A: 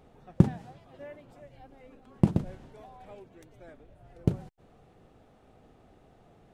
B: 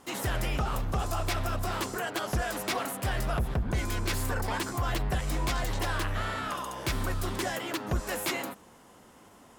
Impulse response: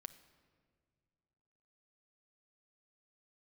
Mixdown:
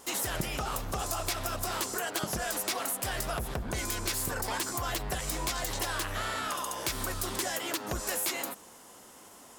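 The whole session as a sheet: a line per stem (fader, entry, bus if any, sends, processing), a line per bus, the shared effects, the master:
−6.0 dB, 0.00 s, no send, no processing
+1.5 dB, 0.00 s, no send, no processing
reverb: not used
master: bass and treble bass −7 dB, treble +9 dB; downward compressor 3 to 1, threshold −30 dBFS, peak gain reduction 7.5 dB

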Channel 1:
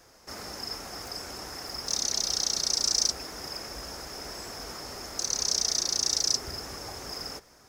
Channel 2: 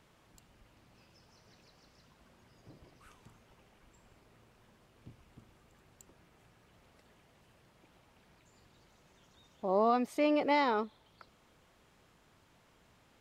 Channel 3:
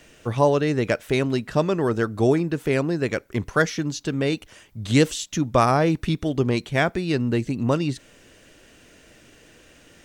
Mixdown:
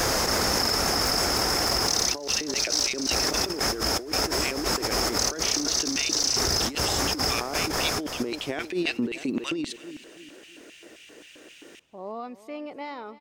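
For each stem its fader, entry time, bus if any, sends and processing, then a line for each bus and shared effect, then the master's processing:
−3.5 dB, 0.00 s, no send, echo send −4 dB, envelope flattener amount 100%
−11.5 dB, 2.30 s, no send, echo send −17.5 dB, no processing
−2.0 dB, 1.75 s, no send, echo send −21 dB, auto-filter high-pass square 3.8 Hz 330–2,600 Hz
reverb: not used
echo: repeating echo 322 ms, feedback 40%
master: compressor whose output falls as the input rises −27 dBFS, ratio −1

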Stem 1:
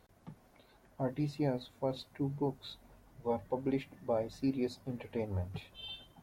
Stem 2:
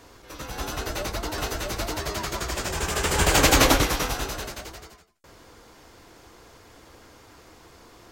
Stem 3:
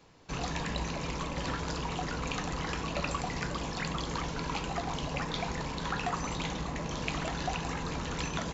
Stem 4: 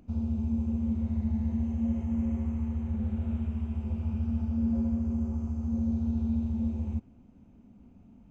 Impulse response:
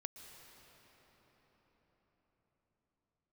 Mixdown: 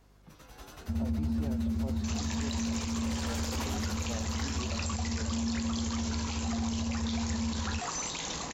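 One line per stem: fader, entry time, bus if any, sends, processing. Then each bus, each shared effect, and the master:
−5.5 dB, 0.00 s, no send, no processing
−17.5 dB, 0.00 s, no send, mains hum 50 Hz, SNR 17 dB
−1.0 dB, 1.75 s, no send, bass and treble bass −8 dB, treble +8 dB; high-shelf EQ 4,400 Hz +9 dB
+2.0 dB, 0.80 s, no send, no processing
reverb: not used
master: brickwall limiter −24.5 dBFS, peak gain reduction 11.5 dB

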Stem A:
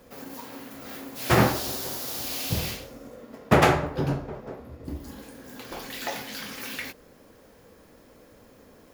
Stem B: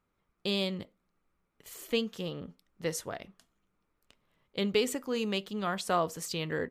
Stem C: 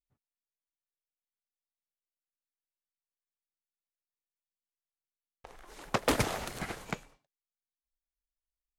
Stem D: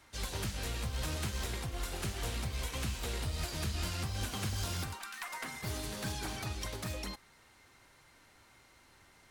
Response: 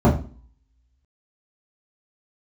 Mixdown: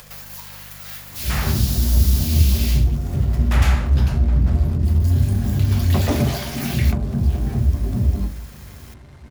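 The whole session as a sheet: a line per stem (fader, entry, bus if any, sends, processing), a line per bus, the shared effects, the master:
+0.5 dB, 0.00 s, bus B, no send, guitar amp tone stack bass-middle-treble 10-0-10; upward compression, threshold −39 dBFS
−13.0 dB, 0.95 s, bus A, no send, Butterworth low-pass 5,000 Hz; downward compressor, threshold −30 dBFS, peak gain reduction 7.5 dB
−8.5 dB, 0.00 s, bus B, send −13 dB, mains hum 50 Hz, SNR 16 dB
−8.0 dB, 1.10 s, bus A, send −8.5 dB, spectral tilt −2.5 dB per octave; soft clipping −35.5 dBFS, distortion −7 dB
bus A: 0.0 dB, leveller curve on the samples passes 5; downward compressor, threshold −42 dBFS, peak gain reduction 8 dB
bus B: 0.0 dB, leveller curve on the samples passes 2; brickwall limiter −20 dBFS, peak gain reduction 7.5 dB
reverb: on, RT60 0.40 s, pre-delay 3 ms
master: no processing

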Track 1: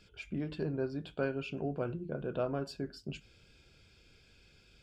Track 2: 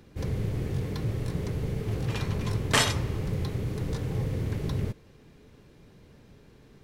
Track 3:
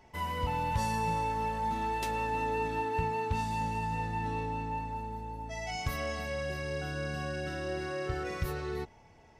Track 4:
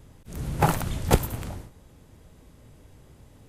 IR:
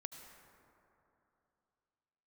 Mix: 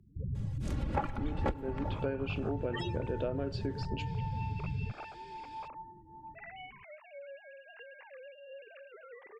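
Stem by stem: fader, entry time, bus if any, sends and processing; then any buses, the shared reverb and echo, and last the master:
−0.5 dB, 0.85 s, send −18 dB, octave-band graphic EQ 125/250/500/1,000/2,000/4,000 Hz −9/+6/+7/−8/+7/+5 dB
−5.0 dB, 0.00 s, no send, spectral peaks only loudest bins 8
−2.5 dB, 0.85 s, no send, three sine waves on the formant tracks; downward compressor 2 to 1, threshold −45 dBFS, peak gain reduction 11.5 dB; phaser whose notches keep moving one way rising 0.8 Hz
−0.5 dB, 0.35 s, send −5 dB, reverb reduction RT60 0.79 s; comb filter 3.6 ms, depth 67%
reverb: on, RT60 2.9 s, pre-delay 68 ms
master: treble cut that deepens with the level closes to 2,100 Hz, closed at −23 dBFS; downward compressor 6 to 1, threshold −30 dBFS, peak gain reduction 18 dB

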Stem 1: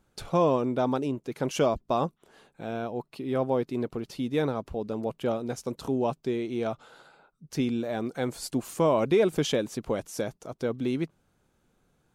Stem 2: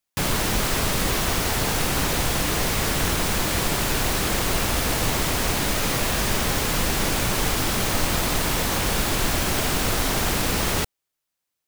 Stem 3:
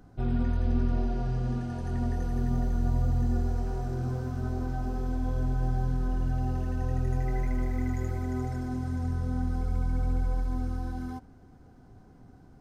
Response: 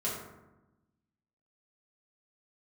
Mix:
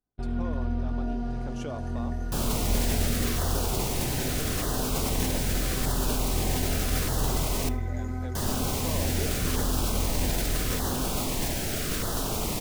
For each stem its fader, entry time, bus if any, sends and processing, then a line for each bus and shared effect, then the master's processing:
−6.5 dB, 0.05 s, bus A, no send, low-pass filter 10,000 Hz
−7.0 dB, 2.15 s, muted 0:07.69–0:08.35, no bus, send −18 dB, parametric band 2,500 Hz −3 dB 1.9 octaves; auto-filter notch saw down 0.81 Hz 760–2,500 Hz
+1.5 dB, 0.00 s, bus A, send −12 dB, parametric band 140 Hz −9 dB 0.9 octaves
bus A: 0.0 dB, downward compressor 3 to 1, threshold −36 dBFS, peak gain reduction 11.5 dB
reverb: on, RT60 1.0 s, pre-delay 4 ms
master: noise gate −36 dBFS, range −38 dB; level that may fall only so fast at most 31 dB per second

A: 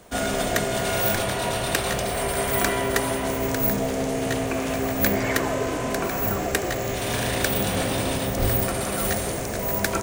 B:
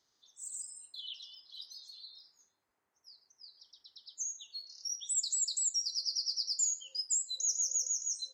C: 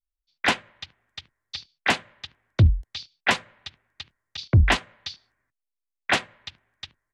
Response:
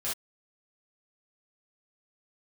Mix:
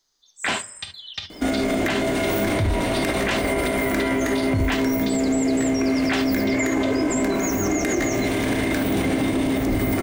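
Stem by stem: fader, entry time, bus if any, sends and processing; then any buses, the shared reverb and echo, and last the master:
+2.5 dB, 1.30 s, bus A, send −8 dB, high-shelf EQ 4,400 Hz −11.5 dB; bit-depth reduction 12 bits, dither triangular; hollow resonant body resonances 290/2,100 Hz, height 16 dB, ringing for 45 ms
+2.0 dB, 0.00 s, bus A, no send, no processing
−5.0 dB, 0.00 s, no bus, send −6.5 dB, automatic gain control gain up to 11 dB
bus A: 0.0 dB, high-shelf EQ 4,200 Hz +7 dB; downward compressor, threshold −17 dBFS, peak gain reduction 8 dB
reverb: on, pre-delay 3 ms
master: brickwall limiter −13.5 dBFS, peak gain reduction 13 dB

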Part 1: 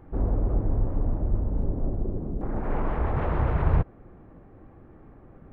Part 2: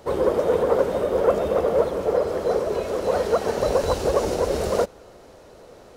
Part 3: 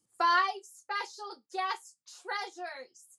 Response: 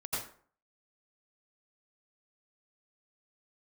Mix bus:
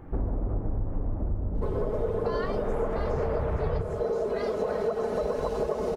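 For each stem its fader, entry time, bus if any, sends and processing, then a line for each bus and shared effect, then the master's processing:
+2.5 dB, 0.00 s, send −9.5 dB, no processing
−3.0 dB, 1.55 s, send −8.5 dB, high-shelf EQ 2,300 Hz −12 dB; comb filter 4.7 ms
−3.0 dB, 2.05 s, no send, no processing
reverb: on, RT60 0.50 s, pre-delay 77 ms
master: downward compressor 6 to 1, threshold −25 dBFS, peak gain reduction 14 dB

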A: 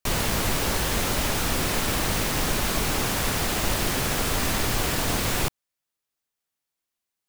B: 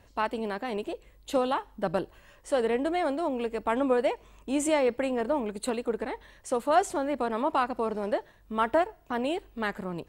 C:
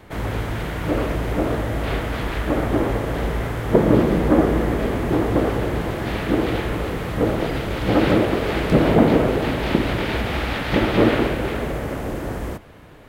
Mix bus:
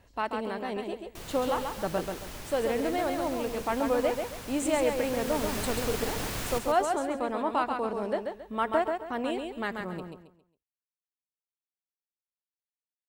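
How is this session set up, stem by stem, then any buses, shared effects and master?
0:04.80 −18.5 dB → 0:05.49 −10 dB, 1.10 s, no send, echo send −6.5 dB, no processing
−2.5 dB, 0.00 s, no send, echo send −5 dB, no processing
muted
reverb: not used
echo: repeating echo 136 ms, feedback 30%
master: no processing

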